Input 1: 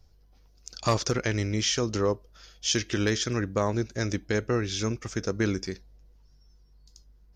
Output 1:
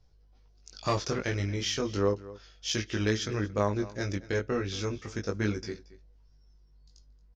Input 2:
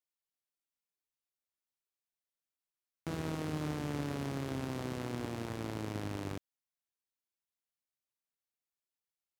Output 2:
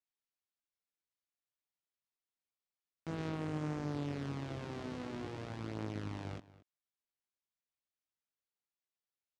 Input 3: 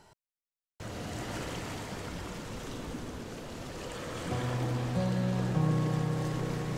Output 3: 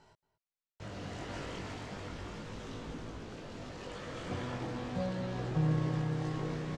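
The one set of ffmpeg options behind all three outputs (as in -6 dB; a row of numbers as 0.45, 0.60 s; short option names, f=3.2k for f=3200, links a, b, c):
-filter_complex "[0:a]lowpass=5.8k,flanger=delay=18.5:depth=2.4:speed=0.34,aeval=exprs='0.188*(cos(1*acos(clip(val(0)/0.188,-1,1)))-cos(1*PI/2))+0.00106*(cos(6*acos(clip(val(0)/0.188,-1,1)))-cos(6*PI/2))+0.00237*(cos(7*acos(clip(val(0)/0.188,-1,1)))-cos(7*PI/2))':c=same,asplit=2[a][b];[b]adelay=227.4,volume=-18dB,highshelf=f=4k:g=-5.12[c];[a][c]amix=inputs=2:normalize=0"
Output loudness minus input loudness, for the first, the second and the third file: -3.0, -2.5, -4.0 LU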